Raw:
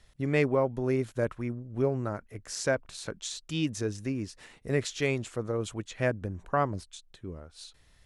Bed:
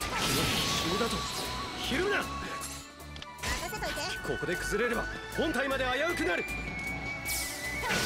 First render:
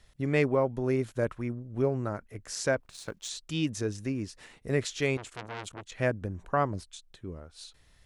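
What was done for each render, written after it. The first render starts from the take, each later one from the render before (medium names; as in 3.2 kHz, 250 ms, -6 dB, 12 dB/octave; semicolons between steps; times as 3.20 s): 2.80–3.29 s: companding laws mixed up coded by A; 5.17–5.92 s: transformer saturation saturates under 2.6 kHz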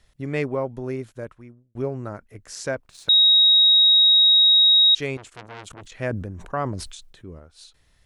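0.76–1.75 s: fade out; 3.09–4.95 s: bleep 3.79 kHz -11.5 dBFS; 5.66–7.39 s: decay stretcher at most 49 dB/s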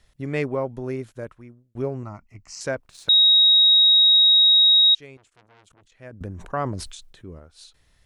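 2.03–2.61 s: static phaser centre 2.4 kHz, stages 8; 3.72–4.16 s: level flattener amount 100%; 4.81–6.21 s: upward expansion 2.5:1, over -25 dBFS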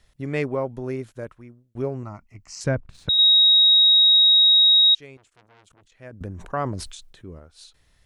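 2.64–3.19 s: tone controls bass +15 dB, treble -10 dB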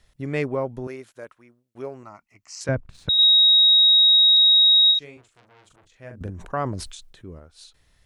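0.87–2.69 s: high-pass 710 Hz 6 dB/octave; 3.23–4.37 s: three bands compressed up and down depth 70%; 4.87–6.30 s: doubling 41 ms -6 dB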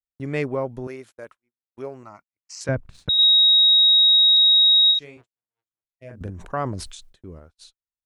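gate -47 dBFS, range -46 dB; 5.84–6.09 s: time-frequency box 710–1900 Hz -15 dB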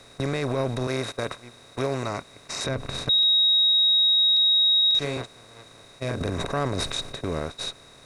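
spectral levelling over time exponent 0.4; peak limiter -16 dBFS, peak gain reduction 10 dB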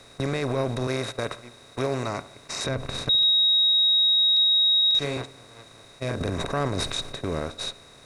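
filtered feedback delay 70 ms, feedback 57%, level -17 dB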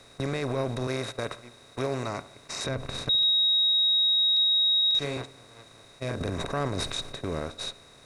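trim -3 dB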